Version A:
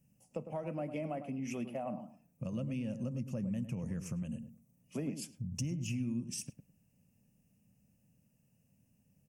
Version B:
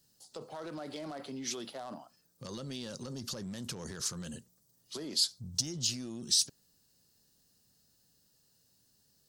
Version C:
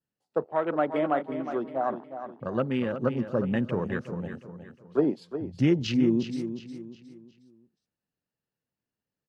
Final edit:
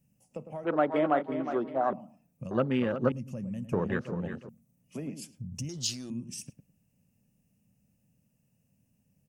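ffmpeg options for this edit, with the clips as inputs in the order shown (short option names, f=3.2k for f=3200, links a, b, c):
-filter_complex "[2:a]asplit=3[a][b][c];[0:a]asplit=5[d][e][f][g][h];[d]atrim=end=0.652[i];[a]atrim=start=0.648:end=1.932[j];[e]atrim=start=1.928:end=2.512[k];[b]atrim=start=2.508:end=3.122[l];[f]atrim=start=3.118:end=3.732[m];[c]atrim=start=3.728:end=4.492[n];[g]atrim=start=4.488:end=5.692[o];[1:a]atrim=start=5.688:end=6.102[p];[h]atrim=start=6.098[q];[i][j]acrossfade=d=0.004:c1=hsin:c2=hsin[r];[r][k]acrossfade=d=0.004:c1=hsin:c2=hsin[s];[s][l]acrossfade=d=0.004:c1=hsin:c2=hsin[t];[t][m]acrossfade=d=0.004:c1=hsin:c2=hsin[u];[u][n]acrossfade=d=0.004:c1=hsin:c2=hsin[v];[v][o]acrossfade=d=0.004:c1=hsin:c2=hsin[w];[w][p]acrossfade=d=0.004:c1=hsin:c2=hsin[x];[x][q]acrossfade=d=0.004:c1=hsin:c2=hsin"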